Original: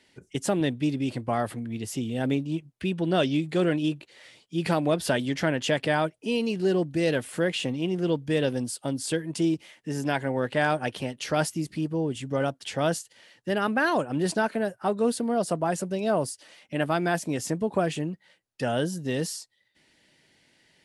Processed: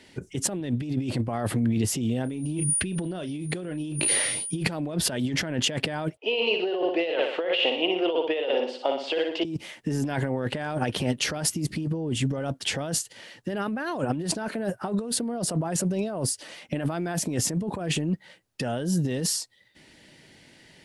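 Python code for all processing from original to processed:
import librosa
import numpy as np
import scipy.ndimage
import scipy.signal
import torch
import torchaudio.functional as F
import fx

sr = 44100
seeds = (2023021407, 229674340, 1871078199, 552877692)

y = fx.dmg_tone(x, sr, hz=9500.0, level_db=-43.0, at=(2.24, 4.62), fade=0.02)
y = fx.doubler(y, sr, ms=33.0, db=-13.5, at=(2.24, 4.62), fade=0.02)
y = fx.sustainer(y, sr, db_per_s=34.0, at=(2.24, 4.62), fade=0.02)
y = fx.chain(y, sr, fx.cabinet(low_hz=460.0, low_slope=24, high_hz=3400.0, hz=(770.0, 1600.0, 2900.0), db=(4, -8, 6)),
    fx.room_flutter(wall_m=10.3, rt60_s=0.56), at=(6.17, 9.45))
y = fx.low_shelf(y, sr, hz=480.0, db=5.0)
y = fx.over_compress(y, sr, threshold_db=-30.0, ratio=-1.0)
y = y * 10.0 ** (2.5 / 20.0)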